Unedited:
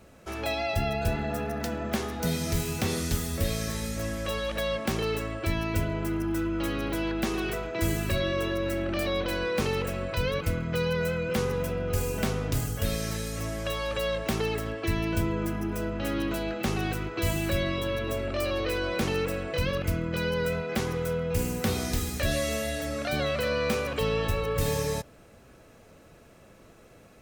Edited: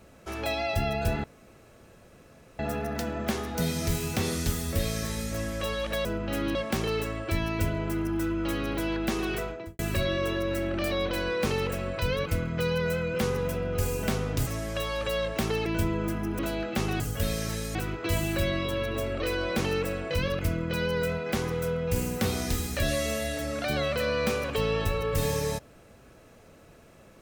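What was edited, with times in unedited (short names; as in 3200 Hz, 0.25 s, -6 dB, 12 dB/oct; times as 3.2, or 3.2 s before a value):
1.24 insert room tone 1.35 s
7.57–7.94 studio fade out
12.62–13.37 move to 16.88
14.56–15.04 cut
15.77–16.27 move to 4.7
18.33–18.63 cut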